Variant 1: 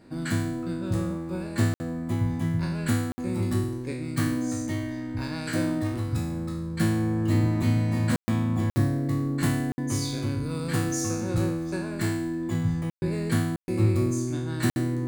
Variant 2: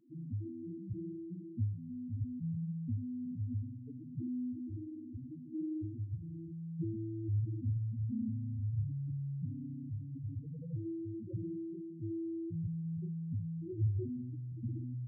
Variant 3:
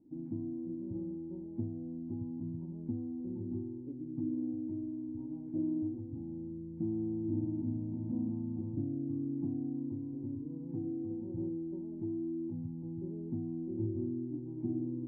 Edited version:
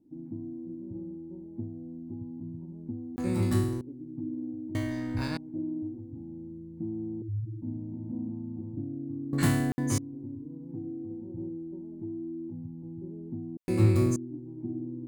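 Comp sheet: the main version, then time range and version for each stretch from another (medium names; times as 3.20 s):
3
3.16–3.81 s: from 1
4.75–5.37 s: from 1
7.22–7.62 s: from 2
9.33–9.98 s: from 1
13.57–14.16 s: from 1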